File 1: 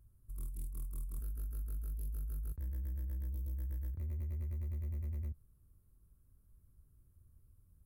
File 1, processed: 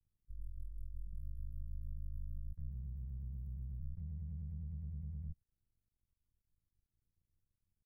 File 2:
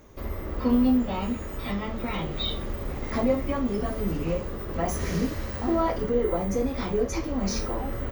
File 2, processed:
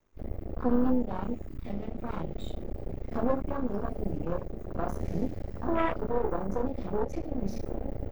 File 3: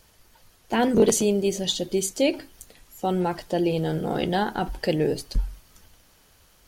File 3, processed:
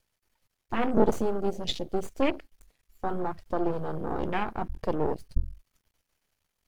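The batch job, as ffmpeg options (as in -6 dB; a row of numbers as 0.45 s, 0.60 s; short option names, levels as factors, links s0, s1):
-af "aeval=exprs='max(val(0),0)':c=same,equalizer=f=2200:t=o:w=0.67:g=3.5,afwtdn=0.0224"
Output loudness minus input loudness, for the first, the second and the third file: -5.0 LU, -5.5 LU, -6.0 LU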